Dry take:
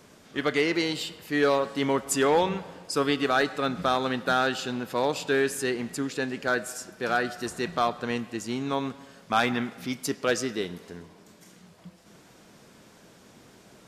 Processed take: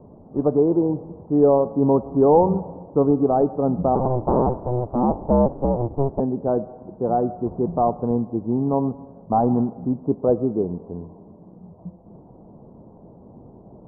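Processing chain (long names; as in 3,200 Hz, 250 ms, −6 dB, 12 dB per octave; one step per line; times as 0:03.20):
0:03.95–0:06.20: sub-harmonics by changed cycles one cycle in 2, inverted
Butterworth low-pass 940 Hz 48 dB per octave
low-shelf EQ 150 Hz +8.5 dB
level +7 dB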